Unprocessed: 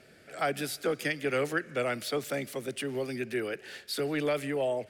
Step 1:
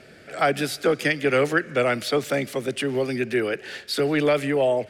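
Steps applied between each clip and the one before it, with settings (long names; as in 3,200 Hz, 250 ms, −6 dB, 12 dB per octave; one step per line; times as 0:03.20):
high-shelf EQ 9,900 Hz −11 dB
level +9 dB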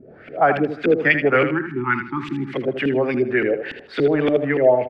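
auto-filter low-pass saw up 3.5 Hz 260–3,000 Hz
time-frequency box erased 0:01.45–0:02.54, 400–800 Hz
repeating echo 79 ms, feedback 26%, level −9 dB
level +1.5 dB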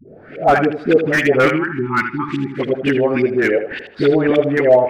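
all-pass dispersion highs, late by 78 ms, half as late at 510 Hz
slew-rate limiting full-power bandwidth 240 Hz
level +4 dB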